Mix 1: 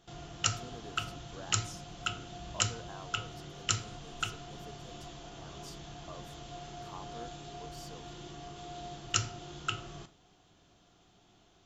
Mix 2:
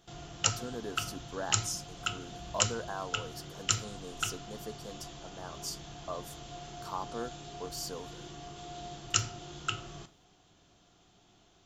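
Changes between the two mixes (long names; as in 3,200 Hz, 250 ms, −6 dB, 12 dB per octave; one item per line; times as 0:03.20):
speech +10.0 dB
master: add high-shelf EQ 6,800 Hz +5.5 dB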